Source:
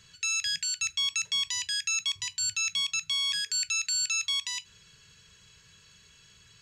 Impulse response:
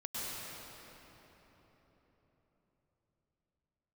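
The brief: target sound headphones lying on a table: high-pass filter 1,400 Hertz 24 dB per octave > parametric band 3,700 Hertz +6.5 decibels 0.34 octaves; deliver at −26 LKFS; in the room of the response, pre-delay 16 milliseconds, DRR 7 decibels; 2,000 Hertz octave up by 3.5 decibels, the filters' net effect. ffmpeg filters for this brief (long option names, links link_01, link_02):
-filter_complex "[0:a]equalizer=frequency=2000:width_type=o:gain=4.5,asplit=2[link_01][link_02];[1:a]atrim=start_sample=2205,adelay=16[link_03];[link_02][link_03]afir=irnorm=-1:irlink=0,volume=-10dB[link_04];[link_01][link_04]amix=inputs=2:normalize=0,highpass=frequency=1400:width=0.5412,highpass=frequency=1400:width=1.3066,equalizer=frequency=3700:width_type=o:width=0.34:gain=6.5,volume=-2.5dB"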